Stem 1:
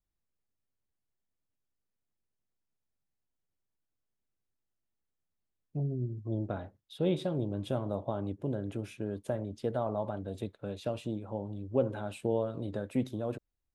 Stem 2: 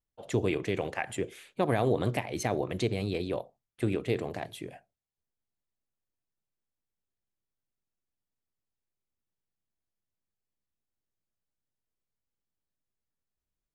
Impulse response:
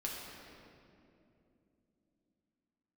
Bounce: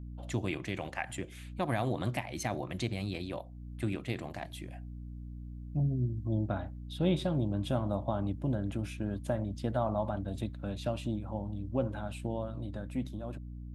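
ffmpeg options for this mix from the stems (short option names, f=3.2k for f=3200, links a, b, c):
-filter_complex "[0:a]dynaudnorm=f=430:g=11:m=7dB,aeval=exprs='val(0)+0.0126*(sin(2*PI*60*n/s)+sin(2*PI*2*60*n/s)/2+sin(2*PI*3*60*n/s)/3+sin(2*PI*4*60*n/s)/4+sin(2*PI*5*60*n/s)/5)':c=same,volume=-3.5dB[a];[1:a]volume=-2.5dB,asplit=2[b][c];[c]apad=whole_len=606249[d];[a][d]sidechaincompress=threshold=-40dB:ratio=8:attack=46:release=413[e];[e][b]amix=inputs=2:normalize=0,equalizer=f=440:t=o:w=0.36:g=-15"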